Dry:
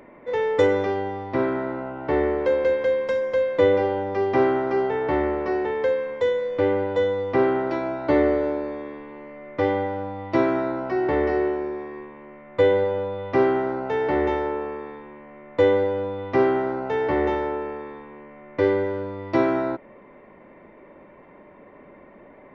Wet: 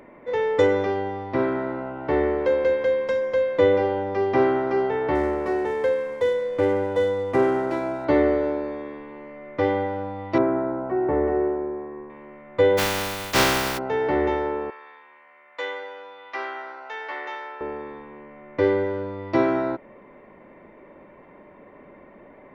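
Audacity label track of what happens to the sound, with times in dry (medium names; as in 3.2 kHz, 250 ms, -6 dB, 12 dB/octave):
5.150000	8.050000	median filter over 9 samples
10.380000	12.100000	low-pass 1.2 kHz
12.770000	13.770000	spectral contrast reduction exponent 0.26
14.700000	17.610000	high-pass 1.2 kHz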